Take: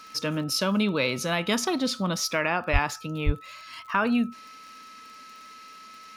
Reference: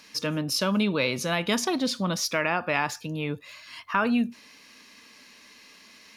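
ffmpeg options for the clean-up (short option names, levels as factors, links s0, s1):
-filter_complex "[0:a]adeclick=t=4,bandreject=f=1300:w=30,asplit=3[s0][s1][s2];[s0]afade=t=out:st=2.72:d=0.02[s3];[s1]highpass=f=140:w=0.5412,highpass=f=140:w=1.3066,afade=t=in:st=2.72:d=0.02,afade=t=out:st=2.84:d=0.02[s4];[s2]afade=t=in:st=2.84:d=0.02[s5];[s3][s4][s5]amix=inputs=3:normalize=0,asplit=3[s6][s7][s8];[s6]afade=t=out:st=3.25:d=0.02[s9];[s7]highpass=f=140:w=0.5412,highpass=f=140:w=1.3066,afade=t=in:st=3.25:d=0.02,afade=t=out:st=3.37:d=0.02[s10];[s8]afade=t=in:st=3.37:d=0.02[s11];[s9][s10][s11]amix=inputs=3:normalize=0"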